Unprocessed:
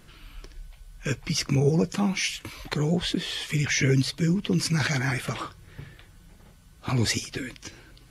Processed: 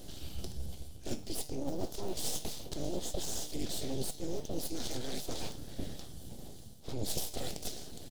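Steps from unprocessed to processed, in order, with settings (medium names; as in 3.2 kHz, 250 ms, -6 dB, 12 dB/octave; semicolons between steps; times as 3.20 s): cycle switcher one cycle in 3, inverted; reverse; compression 12:1, threshold -37 dBFS, peak gain reduction 21 dB; reverse; feedback comb 150 Hz, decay 0.43 s, harmonics all, mix 70%; on a send: delay 593 ms -17.5 dB; on the sum: full-wave rectifier; high-order bell 1.6 kHz -14.5 dB; trim +15.5 dB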